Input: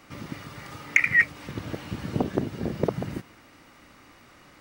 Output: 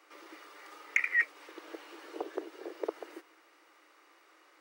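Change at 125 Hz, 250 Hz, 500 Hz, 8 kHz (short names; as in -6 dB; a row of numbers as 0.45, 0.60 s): under -40 dB, -16.5 dB, -8.5 dB, -10.0 dB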